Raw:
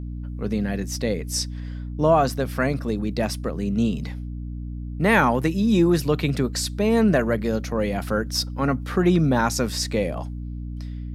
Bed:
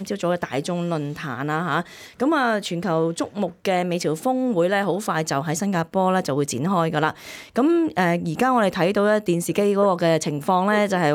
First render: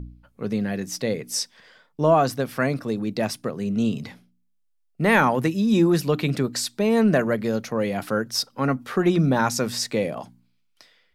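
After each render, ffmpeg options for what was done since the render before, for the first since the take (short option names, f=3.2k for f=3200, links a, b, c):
-af "bandreject=f=60:t=h:w=4,bandreject=f=120:t=h:w=4,bandreject=f=180:t=h:w=4,bandreject=f=240:t=h:w=4,bandreject=f=300:t=h:w=4"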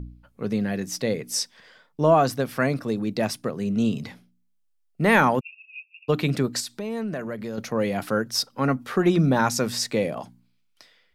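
-filter_complex "[0:a]asplit=3[a][b][c];[a]afade=t=out:st=5.39:d=0.02[d];[b]asuperpass=centerf=2600:order=20:qfactor=6.3,afade=t=in:st=5.39:d=0.02,afade=t=out:st=6.08:d=0.02[e];[c]afade=t=in:st=6.08:d=0.02[f];[d][e][f]amix=inputs=3:normalize=0,asettb=1/sr,asplit=3[g][h][i];[g]atrim=end=6.604[j];[h]atrim=start=6.6:end=7.58,asetpts=PTS-STARTPTS,afade=t=in:d=0.004:c=qsin,afade=t=out:st=0.976:d=0.004:c=qsin,acompressor=threshold=-32dB:ratio=2.5:attack=3.2:release=140:knee=1:detection=peak[k];[i]atrim=start=7.576[l];[j][k]acrossfade=d=0.004:c1=hsin:c2=qsin[m];[m][l]acrossfade=d=0.004:c1=qsin:c2=hsin"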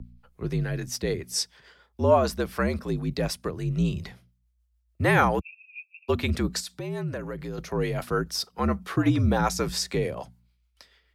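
-filter_complex "[0:a]acrossover=split=420[a][b];[a]aeval=exprs='val(0)*(1-0.5/2+0.5/2*cos(2*PI*6.8*n/s))':c=same[c];[b]aeval=exprs='val(0)*(1-0.5/2-0.5/2*cos(2*PI*6.8*n/s))':c=same[d];[c][d]amix=inputs=2:normalize=0,afreqshift=-59"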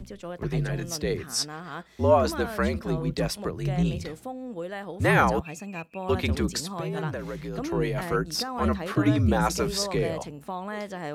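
-filter_complex "[1:a]volume=-15dB[a];[0:a][a]amix=inputs=2:normalize=0"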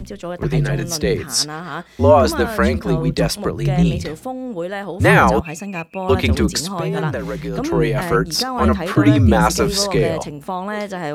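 -af "volume=9.5dB,alimiter=limit=-1dB:level=0:latency=1"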